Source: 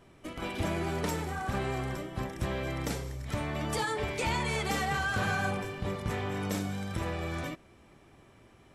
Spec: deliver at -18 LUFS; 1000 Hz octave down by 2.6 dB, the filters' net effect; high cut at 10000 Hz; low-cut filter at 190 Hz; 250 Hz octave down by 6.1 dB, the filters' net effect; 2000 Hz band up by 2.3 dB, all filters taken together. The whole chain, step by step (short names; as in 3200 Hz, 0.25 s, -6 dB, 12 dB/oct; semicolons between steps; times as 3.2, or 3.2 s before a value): HPF 190 Hz; LPF 10000 Hz; bell 250 Hz -6 dB; bell 1000 Hz -4 dB; bell 2000 Hz +4.5 dB; gain +16.5 dB